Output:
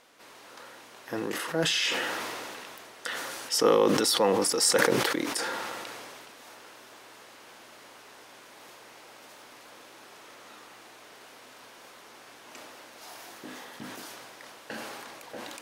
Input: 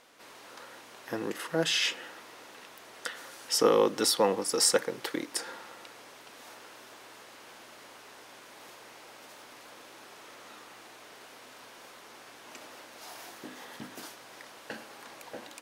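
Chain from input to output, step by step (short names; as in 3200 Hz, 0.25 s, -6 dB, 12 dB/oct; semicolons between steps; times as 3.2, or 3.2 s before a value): sustainer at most 21 dB/s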